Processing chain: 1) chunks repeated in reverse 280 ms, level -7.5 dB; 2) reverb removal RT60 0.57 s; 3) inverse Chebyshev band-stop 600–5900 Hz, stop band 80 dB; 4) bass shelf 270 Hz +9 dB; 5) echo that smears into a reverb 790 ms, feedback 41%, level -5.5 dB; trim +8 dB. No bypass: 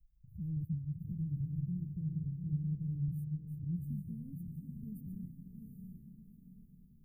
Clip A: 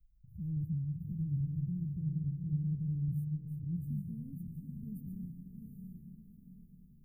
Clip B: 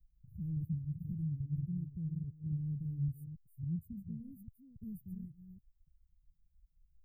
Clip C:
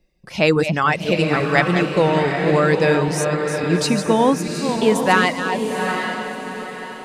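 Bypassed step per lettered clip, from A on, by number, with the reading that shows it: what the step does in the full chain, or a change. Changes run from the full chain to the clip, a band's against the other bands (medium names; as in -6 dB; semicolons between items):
2, loudness change +2.0 LU; 5, echo-to-direct -4.5 dB to none; 3, crest factor change +3.0 dB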